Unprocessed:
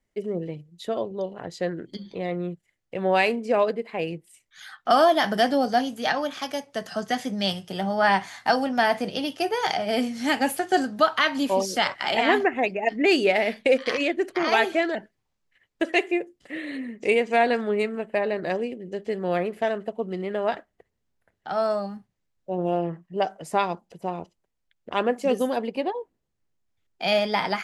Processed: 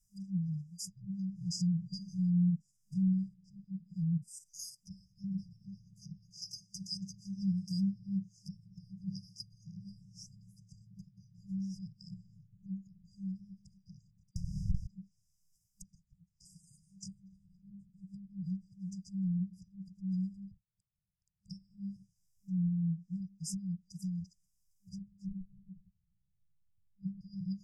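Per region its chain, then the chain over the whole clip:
1.04–4.75 stepped spectrum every 50 ms + comb 6.5 ms, depth 83%
14.31–14.87 Schmitt trigger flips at -31.5 dBFS + mismatched tape noise reduction decoder only
20.51–21.5 inverted band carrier 3500 Hz + upward compressor, threshold -44 dBFS
25.28–27.21 LPF 1300 Hz 24 dB/oct + Doppler distortion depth 0.23 ms
whole clip: treble ducked by the level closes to 580 Hz, closed at -21 dBFS; FFT band-reject 200–4800 Hz; high shelf 3000 Hz +10.5 dB; gain +1.5 dB

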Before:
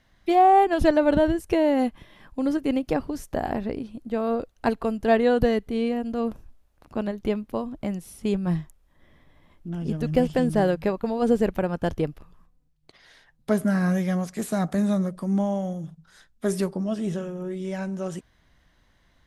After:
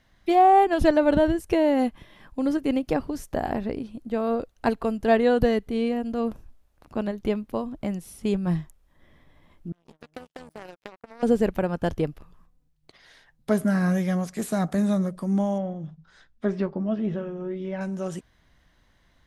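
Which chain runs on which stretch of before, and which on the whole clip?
9.72–11.23 HPF 430 Hz 6 dB/oct + compressor 5:1, threshold -25 dBFS + power-law curve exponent 3
15.58–17.81 treble ducked by the level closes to 2900 Hz, closed at -26 dBFS + air absorption 110 m + doubler 14 ms -11 dB
whole clip: dry

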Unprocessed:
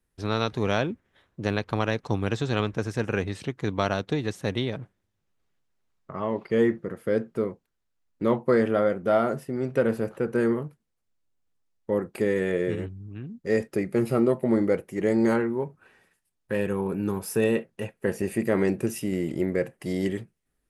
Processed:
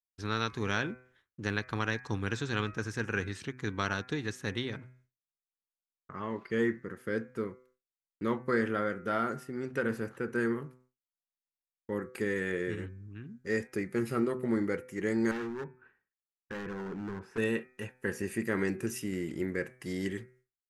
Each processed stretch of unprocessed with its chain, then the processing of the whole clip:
15.31–17.38 LPF 1800 Hz + hard clip -27 dBFS
whole clip: de-hum 126.9 Hz, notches 20; expander -52 dBFS; fifteen-band EQ 160 Hz -3 dB, 630 Hz -10 dB, 1600 Hz +7 dB, 6300 Hz +5 dB; gain -5.5 dB

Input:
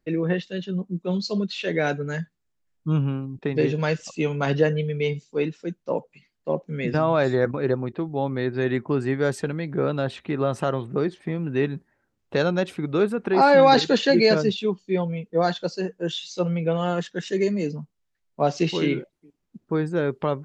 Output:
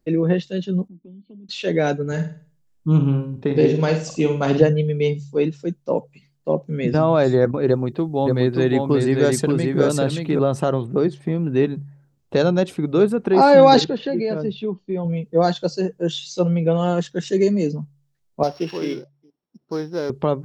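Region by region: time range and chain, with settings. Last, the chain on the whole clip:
0.88–1.49 vocal tract filter i + compressor 12:1, threshold -45 dBFS
2.07–4.62 flutter echo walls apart 8.6 m, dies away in 0.41 s + Doppler distortion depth 0.11 ms
7.68–10.39 high shelf 3700 Hz +9 dB + echo 0.578 s -3.5 dB
13.84–15.05 compressor 2.5:1, threshold -27 dBFS + air absorption 310 m
18.43–20.1 sample sorter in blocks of 8 samples + HPF 640 Hz 6 dB/oct + air absorption 250 m
whole clip: bell 1900 Hz -8 dB 1.9 oct; de-hum 70.66 Hz, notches 2; gain +6 dB

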